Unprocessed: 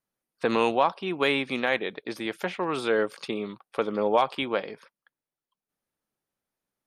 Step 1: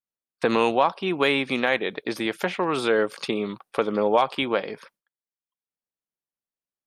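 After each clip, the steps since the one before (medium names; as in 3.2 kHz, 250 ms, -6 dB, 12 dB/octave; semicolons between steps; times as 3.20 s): gate with hold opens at -44 dBFS; in parallel at +2 dB: compression, threshold -31 dBFS, peak gain reduction 14 dB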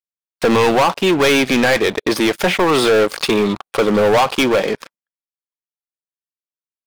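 waveshaping leveller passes 5; trim -3 dB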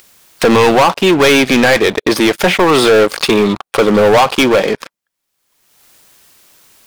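upward compressor, threshold -18 dBFS; trim +4.5 dB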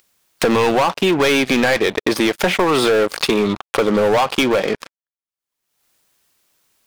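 power-law waveshaper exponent 1.4; compression, threshold -13 dBFS, peak gain reduction 5.5 dB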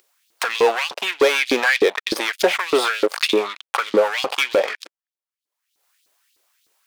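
LFO high-pass saw up 3.3 Hz 310–4400 Hz; trim -3 dB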